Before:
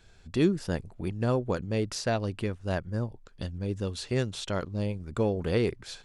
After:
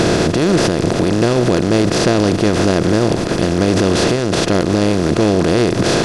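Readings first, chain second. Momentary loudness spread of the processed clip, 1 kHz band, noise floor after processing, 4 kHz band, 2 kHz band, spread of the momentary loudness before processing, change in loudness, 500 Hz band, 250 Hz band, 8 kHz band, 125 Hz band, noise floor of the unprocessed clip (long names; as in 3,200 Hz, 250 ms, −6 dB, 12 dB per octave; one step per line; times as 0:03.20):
2 LU, +18.0 dB, −18 dBFS, +18.5 dB, +17.5 dB, 8 LU, +16.0 dB, +16.0 dB, +17.5 dB, +19.5 dB, +13.5 dB, −55 dBFS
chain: compressor on every frequency bin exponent 0.2
boost into a limiter +15.5 dB
level −3.5 dB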